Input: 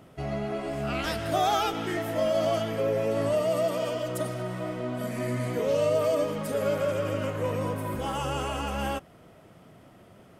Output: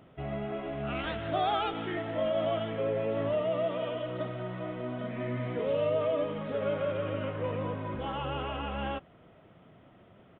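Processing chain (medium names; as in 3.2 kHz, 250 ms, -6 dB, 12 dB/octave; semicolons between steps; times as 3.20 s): resampled via 8 kHz; trim -4 dB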